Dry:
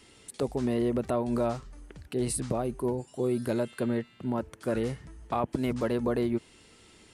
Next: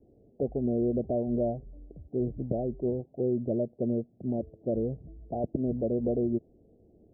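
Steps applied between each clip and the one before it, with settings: steep low-pass 710 Hz 72 dB/oct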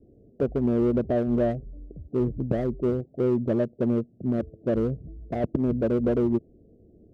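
Wiener smoothing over 41 samples; in parallel at -11 dB: hard clip -27 dBFS, distortion -12 dB; on the sum: gain +4 dB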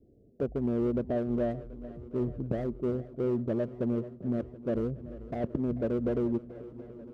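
swung echo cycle 0.731 s, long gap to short 1.5:1, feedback 61%, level -17.5 dB; gain -6 dB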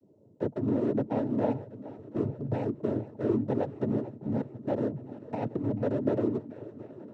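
noise vocoder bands 12; gain +1.5 dB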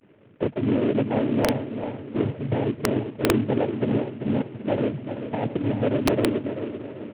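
CVSD 16 kbps; feedback echo 0.389 s, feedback 36%, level -9 dB; wrapped overs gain 16.5 dB; gain +6 dB

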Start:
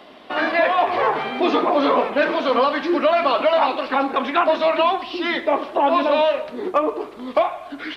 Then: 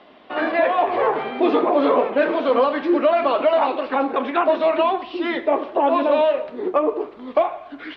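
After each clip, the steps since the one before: LPF 3500 Hz 12 dB/oct; dynamic EQ 420 Hz, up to +7 dB, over -32 dBFS, Q 0.88; gain -4 dB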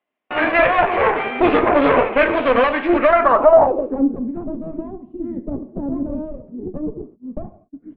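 gate -35 dBFS, range -36 dB; added harmonics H 4 -15 dB, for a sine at -6 dBFS; low-pass sweep 2400 Hz -> 210 Hz, 3–4.2; gain +1.5 dB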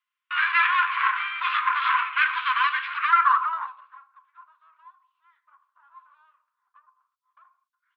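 rippled Chebyshev high-pass 1000 Hz, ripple 6 dB; gain +2 dB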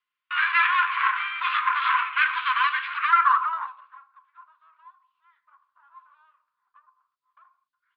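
downsampling 11025 Hz

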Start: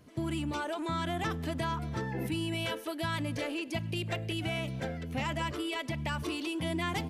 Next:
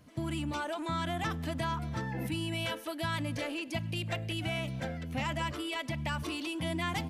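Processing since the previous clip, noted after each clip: bell 400 Hz -11.5 dB 0.29 oct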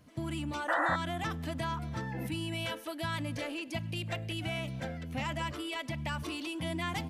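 painted sound noise, 0.68–0.96, 490–2000 Hz -28 dBFS; gain -1.5 dB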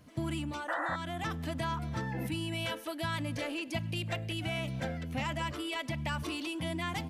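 vocal rider 0.5 s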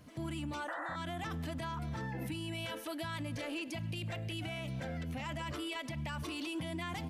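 limiter -33 dBFS, peak gain reduction 10.5 dB; gain +1 dB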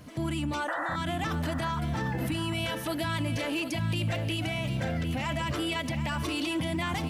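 lo-fi delay 0.751 s, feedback 35%, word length 11-bit, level -10 dB; gain +8.5 dB

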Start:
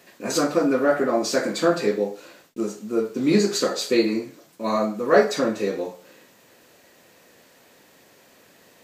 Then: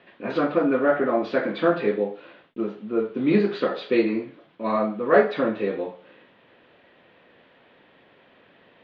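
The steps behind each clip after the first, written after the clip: elliptic low-pass 3400 Hz, stop band 70 dB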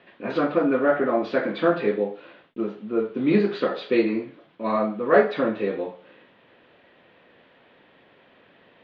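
nothing audible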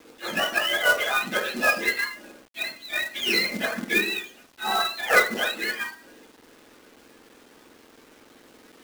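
spectrum mirrored in octaves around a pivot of 920 Hz; companded quantiser 4-bit; gain +1.5 dB

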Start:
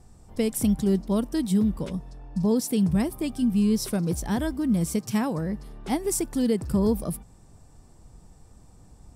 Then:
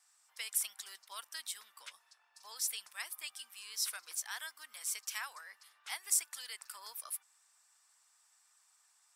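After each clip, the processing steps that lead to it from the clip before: HPF 1300 Hz 24 dB/oct; harmonic-percussive split harmonic -4 dB; gain -1.5 dB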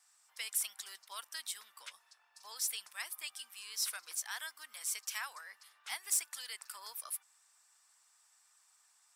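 soft clip -24.5 dBFS, distortion -16 dB; gain +1 dB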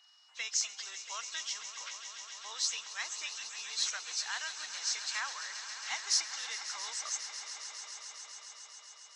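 nonlinear frequency compression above 2300 Hz 1.5:1; whine 2900 Hz -67 dBFS; swelling echo 0.136 s, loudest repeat 5, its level -14 dB; gain +4 dB

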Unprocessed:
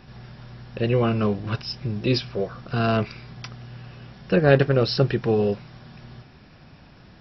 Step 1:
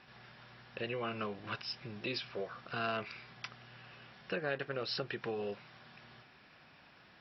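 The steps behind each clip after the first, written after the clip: compressor 6:1, threshold -22 dBFS, peak gain reduction 11.5 dB; LPF 2500 Hz 12 dB/oct; tilt +4.5 dB/oct; gain -6.5 dB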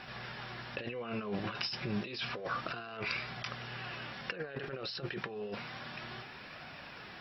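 negative-ratio compressor -46 dBFS, ratio -1; flange 0.3 Hz, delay 1.3 ms, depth 4.6 ms, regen +69%; gain +11 dB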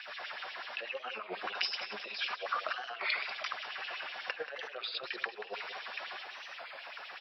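LFO high-pass sine 8.1 Hz 560–3200 Hz; feedback echo 0.183 s, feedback 42%, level -12 dB; record warp 33 1/3 rpm, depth 160 cents

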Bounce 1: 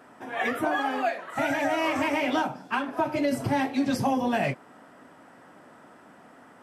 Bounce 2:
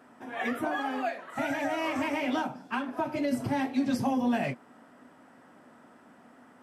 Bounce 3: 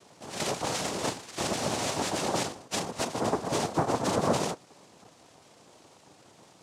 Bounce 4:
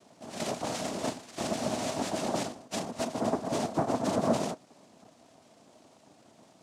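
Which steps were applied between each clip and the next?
bell 240 Hz +7 dB 0.28 oct; gain -5 dB
noise vocoder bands 2
small resonant body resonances 240/640 Hz, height 9 dB, ringing for 30 ms; gain -5.5 dB

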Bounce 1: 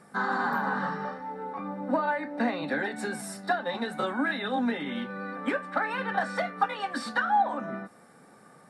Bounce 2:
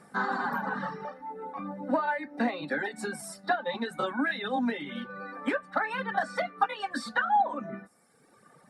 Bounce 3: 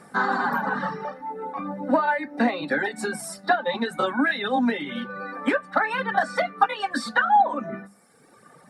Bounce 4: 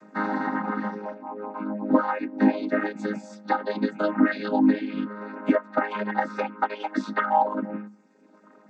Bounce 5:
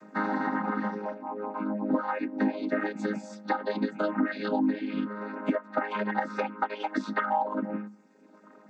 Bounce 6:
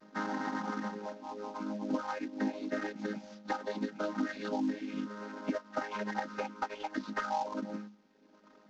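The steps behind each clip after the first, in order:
reverb removal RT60 1.4 s
notches 50/100/150/200 Hz; gain +6.5 dB
chord vocoder major triad, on G#3
compressor 3:1, threshold -25 dBFS, peak gain reduction 9.5 dB
CVSD 32 kbps; gain -6.5 dB

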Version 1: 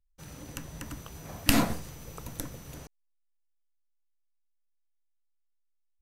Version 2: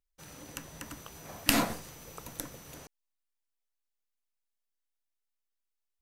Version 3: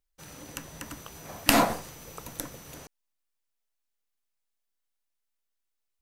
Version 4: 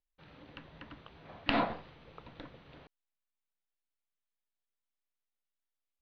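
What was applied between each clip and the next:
low shelf 200 Hz -11 dB
dynamic EQ 780 Hz, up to +7 dB, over -46 dBFS, Q 0.87; gain +3 dB
steep low-pass 4000 Hz 48 dB/oct; gain -8 dB

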